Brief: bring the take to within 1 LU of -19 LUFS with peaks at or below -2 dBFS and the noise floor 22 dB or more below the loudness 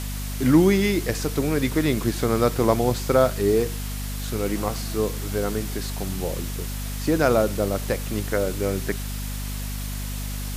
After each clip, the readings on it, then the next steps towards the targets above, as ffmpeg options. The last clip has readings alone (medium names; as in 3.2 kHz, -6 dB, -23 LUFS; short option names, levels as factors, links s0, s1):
hum 50 Hz; highest harmonic 250 Hz; hum level -28 dBFS; noise floor -30 dBFS; noise floor target -46 dBFS; loudness -24.0 LUFS; peak level -5.0 dBFS; loudness target -19.0 LUFS
-> -af "bandreject=f=50:t=h:w=4,bandreject=f=100:t=h:w=4,bandreject=f=150:t=h:w=4,bandreject=f=200:t=h:w=4,bandreject=f=250:t=h:w=4"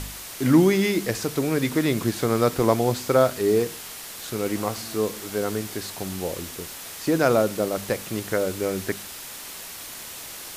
hum not found; noise floor -38 dBFS; noise floor target -46 dBFS
-> -af "afftdn=nr=8:nf=-38"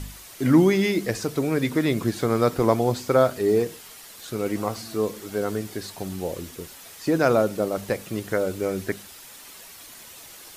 noise floor -45 dBFS; noise floor target -46 dBFS
-> -af "afftdn=nr=6:nf=-45"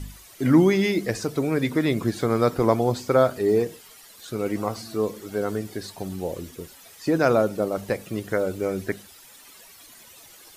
noise floor -49 dBFS; loudness -24.0 LUFS; peak level -5.5 dBFS; loudness target -19.0 LUFS
-> -af "volume=1.78,alimiter=limit=0.794:level=0:latency=1"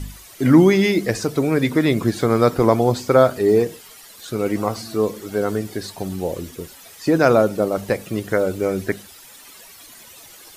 loudness -19.0 LUFS; peak level -2.0 dBFS; noise floor -44 dBFS